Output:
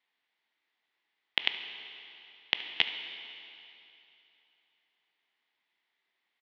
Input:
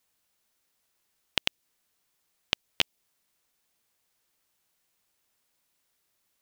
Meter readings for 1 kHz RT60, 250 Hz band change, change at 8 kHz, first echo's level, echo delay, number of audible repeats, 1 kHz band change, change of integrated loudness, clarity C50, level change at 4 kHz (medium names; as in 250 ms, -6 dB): 2.9 s, -7.0 dB, under -20 dB, -17.5 dB, 73 ms, 1, -1.5 dB, -1.5 dB, 7.5 dB, 0.0 dB